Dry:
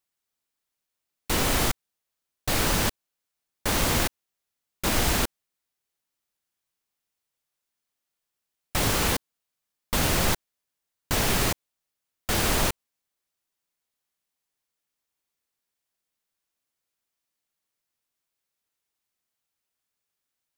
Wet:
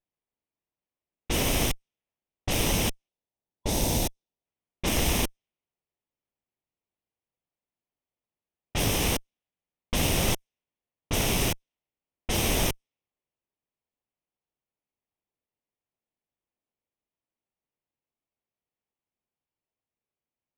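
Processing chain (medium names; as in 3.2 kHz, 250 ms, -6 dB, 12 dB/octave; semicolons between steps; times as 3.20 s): comb filter that takes the minimum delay 0.33 ms; time-frequency box 3.08–4.45 s, 1–3.4 kHz -7 dB; level-controlled noise filter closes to 1.6 kHz, open at -22.5 dBFS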